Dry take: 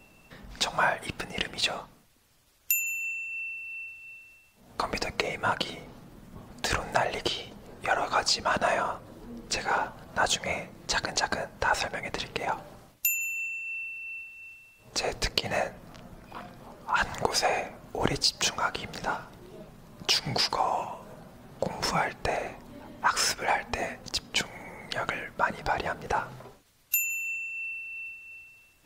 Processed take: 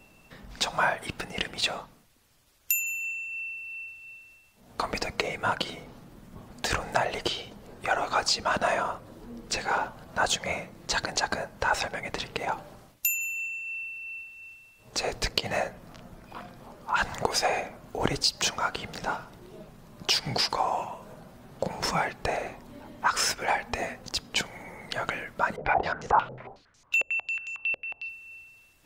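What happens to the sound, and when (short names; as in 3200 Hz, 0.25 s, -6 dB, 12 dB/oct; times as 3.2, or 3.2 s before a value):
25.56–28.09 stepped low-pass 11 Hz 540–6500 Hz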